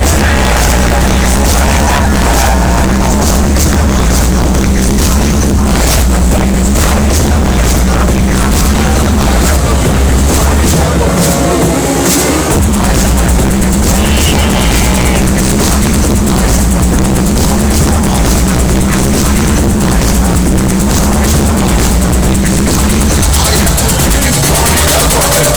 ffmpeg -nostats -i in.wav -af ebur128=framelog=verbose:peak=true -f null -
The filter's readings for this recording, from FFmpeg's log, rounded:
Integrated loudness:
  I:          -9.3 LUFS
  Threshold: -19.3 LUFS
Loudness range:
  LRA:         0.5 LU
  Threshold: -29.4 LUFS
  LRA low:    -9.6 LUFS
  LRA high:   -9.1 LUFS
True peak:
  Peak:       -1.4 dBFS